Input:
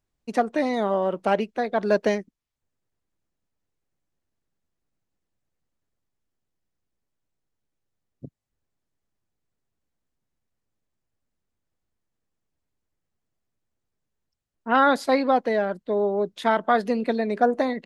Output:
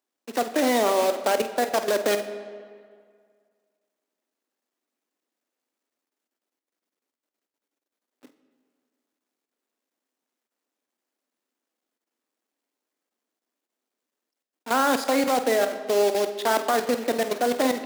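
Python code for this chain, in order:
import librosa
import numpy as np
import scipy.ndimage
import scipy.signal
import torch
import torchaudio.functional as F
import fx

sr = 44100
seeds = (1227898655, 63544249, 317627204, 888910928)

y = fx.block_float(x, sr, bits=3)
y = scipy.signal.sosfilt(scipy.signal.cheby1(4, 1.0, 250.0, 'highpass', fs=sr, output='sos'), y)
y = fx.level_steps(y, sr, step_db=13)
y = fx.doubler(y, sr, ms=49.0, db=-13)
y = fx.rev_freeverb(y, sr, rt60_s=2.0, hf_ratio=0.7, predelay_ms=10, drr_db=11.0)
y = y * 10.0 ** (5.0 / 20.0)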